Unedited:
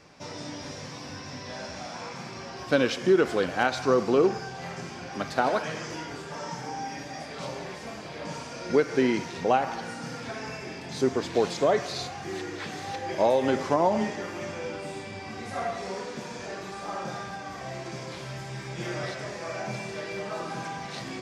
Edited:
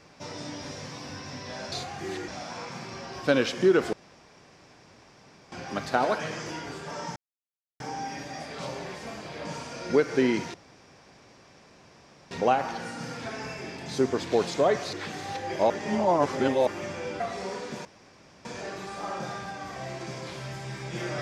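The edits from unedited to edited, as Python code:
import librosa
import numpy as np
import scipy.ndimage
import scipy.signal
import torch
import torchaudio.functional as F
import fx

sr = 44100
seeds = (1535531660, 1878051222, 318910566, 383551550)

y = fx.edit(x, sr, fx.room_tone_fill(start_s=3.37, length_s=1.59),
    fx.insert_silence(at_s=6.6, length_s=0.64),
    fx.insert_room_tone(at_s=9.34, length_s=1.77),
    fx.move(start_s=11.96, length_s=0.56, to_s=1.72),
    fx.reverse_span(start_s=13.29, length_s=0.97),
    fx.cut(start_s=14.79, length_s=0.86),
    fx.insert_room_tone(at_s=16.3, length_s=0.6), tone=tone)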